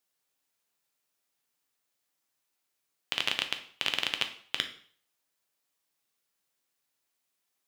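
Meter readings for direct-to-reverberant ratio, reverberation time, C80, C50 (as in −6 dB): 6.0 dB, 0.50 s, 15.5 dB, 11.0 dB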